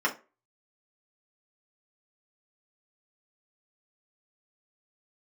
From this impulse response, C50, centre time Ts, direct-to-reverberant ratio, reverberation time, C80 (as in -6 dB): 14.5 dB, 12 ms, -4.0 dB, 0.30 s, 21.5 dB